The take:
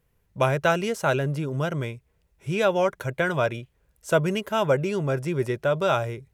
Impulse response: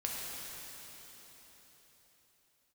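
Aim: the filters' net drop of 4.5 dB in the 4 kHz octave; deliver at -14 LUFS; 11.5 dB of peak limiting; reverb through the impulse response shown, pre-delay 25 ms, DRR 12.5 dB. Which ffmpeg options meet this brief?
-filter_complex "[0:a]equalizer=f=4000:t=o:g=-6.5,alimiter=limit=0.1:level=0:latency=1,asplit=2[s0][s1];[1:a]atrim=start_sample=2205,adelay=25[s2];[s1][s2]afir=irnorm=-1:irlink=0,volume=0.158[s3];[s0][s3]amix=inputs=2:normalize=0,volume=5.96"

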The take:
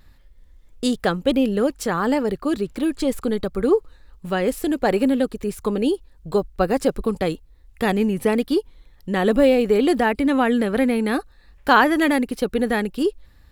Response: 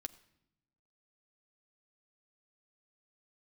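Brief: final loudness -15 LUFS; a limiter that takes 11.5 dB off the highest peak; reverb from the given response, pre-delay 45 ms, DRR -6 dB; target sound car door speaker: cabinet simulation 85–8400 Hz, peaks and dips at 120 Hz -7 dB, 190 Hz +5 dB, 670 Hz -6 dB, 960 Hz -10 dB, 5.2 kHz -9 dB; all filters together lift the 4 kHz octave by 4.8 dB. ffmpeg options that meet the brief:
-filter_complex "[0:a]equalizer=f=4000:t=o:g=8,alimiter=limit=0.211:level=0:latency=1,asplit=2[s0][s1];[1:a]atrim=start_sample=2205,adelay=45[s2];[s1][s2]afir=irnorm=-1:irlink=0,volume=2.99[s3];[s0][s3]amix=inputs=2:normalize=0,highpass=85,equalizer=f=120:t=q:w=4:g=-7,equalizer=f=190:t=q:w=4:g=5,equalizer=f=670:t=q:w=4:g=-6,equalizer=f=960:t=q:w=4:g=-10,equalizer=f=5200:t=q:w=4:g=-9,lowpass=f=8400:w=0.5412,lowpass=f=8400:w=1.3066,volume=1.19"

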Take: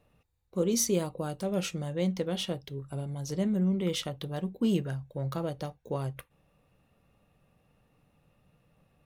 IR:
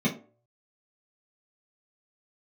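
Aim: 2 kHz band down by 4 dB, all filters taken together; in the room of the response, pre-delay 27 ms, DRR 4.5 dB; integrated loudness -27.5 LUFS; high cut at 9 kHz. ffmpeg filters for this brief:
-filter_complex "[0:a]lowpass=9000,equalizer=f=2000:t=o:g=-5.5,asplit=2[s0][s1];[1:a]atrim=start_sample=2205,adelay=27[s2];[s1][s2]afir=irnorm=-1:irlink=0,volume=0.188[s3];[s0][s3]amix=inputs=2:normalize=0,volume=0.596"

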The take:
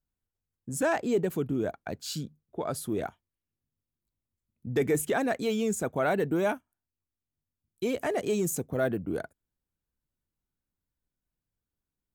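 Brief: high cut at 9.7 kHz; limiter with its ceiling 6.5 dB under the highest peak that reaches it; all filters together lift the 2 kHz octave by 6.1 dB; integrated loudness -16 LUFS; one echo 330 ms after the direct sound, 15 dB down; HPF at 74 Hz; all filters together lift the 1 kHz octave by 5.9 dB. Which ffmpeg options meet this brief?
-af "highpass=74,lowpass=9700,equalizer=f=1000:t=o:g=7.5,equalizer=f=2000:t=o:g=5,alimiter=limit=0.141:level=0:latency=1,aecho=1:1:330:0.178,volume=4.73"

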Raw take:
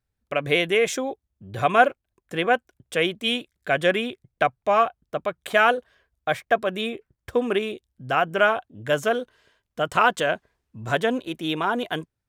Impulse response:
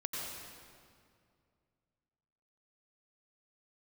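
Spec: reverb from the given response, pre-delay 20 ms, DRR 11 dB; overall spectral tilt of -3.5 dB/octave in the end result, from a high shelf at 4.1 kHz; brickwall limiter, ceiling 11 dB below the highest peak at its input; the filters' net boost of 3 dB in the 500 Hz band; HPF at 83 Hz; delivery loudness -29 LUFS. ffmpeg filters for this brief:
-filter_complex "[0:a]highpass=83,equalizer=f=500:t=o:g=3.5,highshelf=f=4100:g=8,alimiter=limit=0.224:level=0:latency=1,asplit=2[s0][s1];[1:a]atrim=start_sample=2205,adelay=20[s2];[s1][s2]afir=irnorm=-1:irlink=0,volume=0.211[s3];[s0][s3]amix=inputs=2:normalize=0,volume=0.668"

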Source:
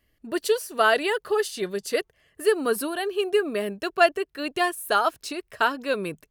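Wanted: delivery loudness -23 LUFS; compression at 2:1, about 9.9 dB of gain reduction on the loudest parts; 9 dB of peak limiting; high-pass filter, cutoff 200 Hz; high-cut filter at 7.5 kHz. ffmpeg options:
-af "highpass=200,lowpass=7500,acompressor=threshold=0.0224:ratio=2,volume=3.98,alimiter=limit=0.266:level=0:latency=1"

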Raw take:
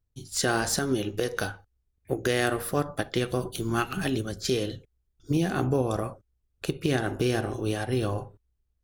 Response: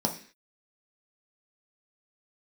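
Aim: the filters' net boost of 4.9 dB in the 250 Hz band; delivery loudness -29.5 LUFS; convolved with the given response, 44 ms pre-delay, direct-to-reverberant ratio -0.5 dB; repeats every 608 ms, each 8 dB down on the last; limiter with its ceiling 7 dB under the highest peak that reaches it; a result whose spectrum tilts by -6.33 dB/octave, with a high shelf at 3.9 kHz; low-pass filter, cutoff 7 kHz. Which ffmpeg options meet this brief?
-filter_complex "[0:a]lowpass=7000,equalizer=f=250:t=o:g=6.5,highshelf=f=3900:g=6.5,alimiter=limit=0.168:level=0:latency=1,aecho=1:1:608|1216|1824|2432|3040:0.398|0.159|0.0637|0.0255|0.0102,asplit=2[s0][s1];[1:a]atrim=start_sample=2205,adelay=44[s2];[s1][s2]afir=irnorm=-1:irlink=0,volume=0.422[s3];[s0][s3]amix=inputs=2:normalize=0,volume=0.355"

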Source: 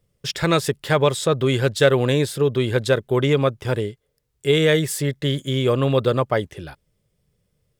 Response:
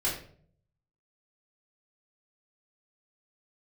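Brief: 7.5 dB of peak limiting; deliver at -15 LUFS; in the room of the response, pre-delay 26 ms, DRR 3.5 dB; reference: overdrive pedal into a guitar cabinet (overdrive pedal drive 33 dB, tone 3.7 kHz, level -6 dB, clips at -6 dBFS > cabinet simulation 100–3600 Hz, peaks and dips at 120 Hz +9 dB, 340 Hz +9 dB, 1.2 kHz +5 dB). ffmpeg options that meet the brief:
-filter_complex "[0:a]alimiter=limit=0.282:level=0:latency=1,asplit=2[s0][s1];[1:a]atrim=start_sample=2205,adelay=26[s2];[s1][s2]afir=irnorm=-1:irlink=0,volume=0.282[s3];[s0][s3]amix=inputs=2:normalize=0,asplit=2[s4][s5];[s5]highpass=f=720:p=1,volume=44.7,asoftclip=type=tanh:threshold=0.501[s6];[s4][s6]amix=inputs=2:normalize=0,lowpass=f=3700:p=1,volume=0.501,highpass=100,equalizer=f=120:t=q:w=4:g=9,equalizer=f=340:t=q:w=4:g=9,equalizer=f=1200:t=q:w=4:g=5,lowpass=f=3600:w=0.5412,lowpass=f=3600:w=1.3066,volume=0.631"

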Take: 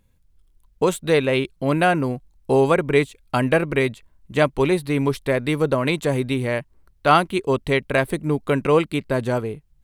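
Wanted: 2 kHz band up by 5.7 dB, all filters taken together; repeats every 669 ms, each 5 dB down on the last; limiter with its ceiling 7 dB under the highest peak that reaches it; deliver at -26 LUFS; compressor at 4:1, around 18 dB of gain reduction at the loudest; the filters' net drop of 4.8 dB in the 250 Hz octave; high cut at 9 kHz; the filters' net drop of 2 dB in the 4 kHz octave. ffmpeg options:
-af "lowpass=9000,equalizer=f=250:t=o:g=-7,equalizer=f=2000:t=o:g=9,equalizer=f=4000:t=o:g=-7,acompressor=threshold=0.0282:ratio=4,alimiter=limit=0.075:level=0:latency=1,aecho=1:1:669|1338|2007|2676|3345|4014|4683:0.562|0.315|0.176|0.0988|0.0553|0.031|0.0173,volume=2.37"

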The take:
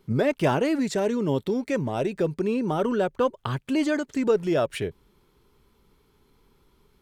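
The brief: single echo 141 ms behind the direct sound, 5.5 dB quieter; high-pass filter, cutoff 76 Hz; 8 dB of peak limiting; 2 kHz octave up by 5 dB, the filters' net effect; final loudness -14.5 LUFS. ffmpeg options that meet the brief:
-af "highpass=76,equalizer=f=2000:t=o:g=6.5,alimiter=limit=0.15:level=0:latency=1,aecho=1:1:141:0.531,volume=3.55"

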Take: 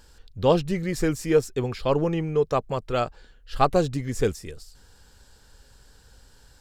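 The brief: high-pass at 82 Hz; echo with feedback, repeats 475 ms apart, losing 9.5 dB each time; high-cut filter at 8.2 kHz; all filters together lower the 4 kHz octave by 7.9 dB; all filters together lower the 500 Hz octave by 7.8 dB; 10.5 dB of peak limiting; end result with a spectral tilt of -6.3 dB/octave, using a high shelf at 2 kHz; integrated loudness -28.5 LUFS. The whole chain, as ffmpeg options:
-af "highpass=82,lowpass=8200,equalizer=f=500:t=o:g=-9,highshelf=f=2000:g=-3,equalizer=f=4000:t=o:g=-7.5,alimiter=limit=0.0944:level=0:latency=1,aecho=1:1:475|950|1425|1900:0.335|0.111|0.0365|0.012,volume=1.5"

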